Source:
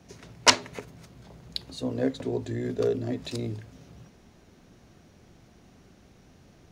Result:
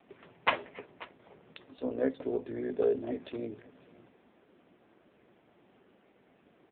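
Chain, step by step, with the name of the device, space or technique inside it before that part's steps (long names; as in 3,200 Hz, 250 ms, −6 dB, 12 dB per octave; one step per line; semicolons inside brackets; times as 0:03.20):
satellite phone (band-pass filter 300–3,200 Hz; single-tap delay 539 ms −21 dB; AMR narrowband 5.9 kbit/s 8,000 Hz)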